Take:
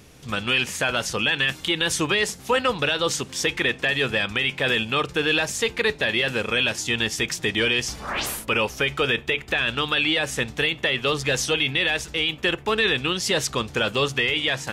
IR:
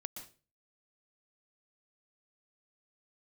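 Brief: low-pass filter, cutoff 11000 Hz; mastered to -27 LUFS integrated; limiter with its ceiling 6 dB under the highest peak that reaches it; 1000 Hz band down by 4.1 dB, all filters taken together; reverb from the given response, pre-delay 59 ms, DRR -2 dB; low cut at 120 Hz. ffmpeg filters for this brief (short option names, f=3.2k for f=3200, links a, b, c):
-filter_complex "[0:a]highpass=120,lowpass=11k,equalizer=f=1k:t=o:g=-5.5,alimiter=limit=-16.5dB:level=0:latency=1,asplit=2[a][b];[1:a]atrim=start_sample=2205,adelay=59[c];[b][c]afir=irnorm=-1:irlink=0,volume=5dB[d];[a][d]amix=inputs=2:normalize=0,volume=-5dB"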